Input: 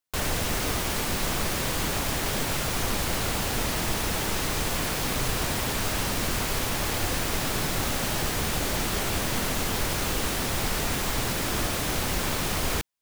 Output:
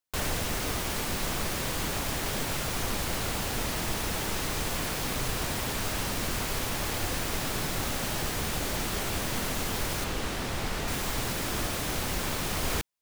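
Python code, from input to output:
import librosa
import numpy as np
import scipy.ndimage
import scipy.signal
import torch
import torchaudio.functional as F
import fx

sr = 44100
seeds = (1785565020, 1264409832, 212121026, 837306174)

y = fx.rider(x, sr, range_db=10, speed_s=0.5)
y = fx.high_shelf(y, sr, hz=6900.0, db=-9.0, at=(10.04, 10.88))
y = F.gain(torch.from_numpy(y), -3.5).numpy()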